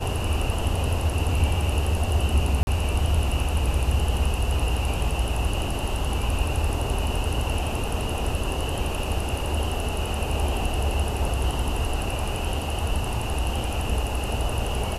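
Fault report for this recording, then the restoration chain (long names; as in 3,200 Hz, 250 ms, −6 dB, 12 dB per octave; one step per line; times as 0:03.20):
0:02.63–0:02.67: drop-out 41 ms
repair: repair the gap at 0:02.63, 41 ms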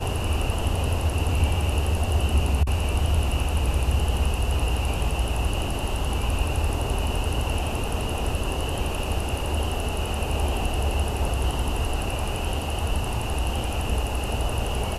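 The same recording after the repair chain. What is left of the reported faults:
none of them is left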